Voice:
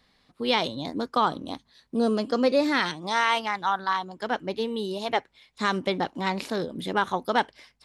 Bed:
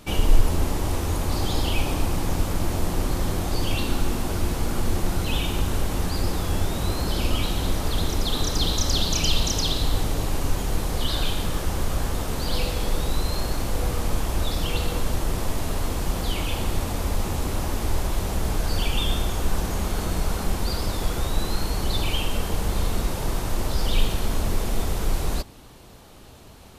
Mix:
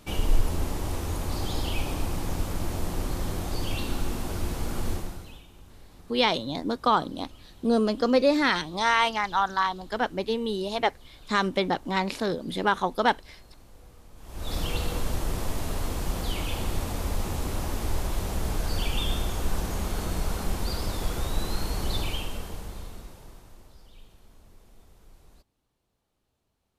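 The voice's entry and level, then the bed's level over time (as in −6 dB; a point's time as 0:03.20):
5.70 s, +1.0 dB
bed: 0:04.92 −5.5 dB
0:05.46 −26.5 dB
0:14.14 −26.5 dB
0:14.54 −4 dB
0:21.97 −4 dB
0:23.92 −30.5 dB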